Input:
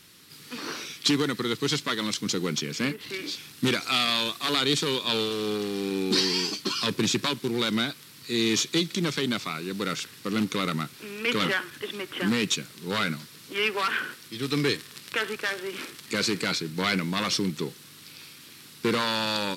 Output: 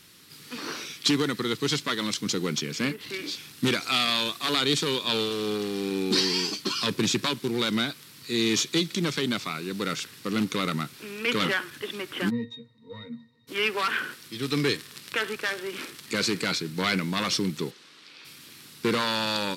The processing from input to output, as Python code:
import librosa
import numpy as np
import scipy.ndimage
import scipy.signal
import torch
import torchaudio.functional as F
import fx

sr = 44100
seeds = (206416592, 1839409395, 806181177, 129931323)

y = fx.octave_resonator(x, sr, note='A#', decay_s=0.16, at=(12.29, 13.47), fade=0.02)
y = fx.bandpass_edges(y, sr, low_hz=340.0, high_hz=fx.line((17.7, 5400.0), (18.24, 4100.0)), at=(17.7, 18.24), fade=0.02)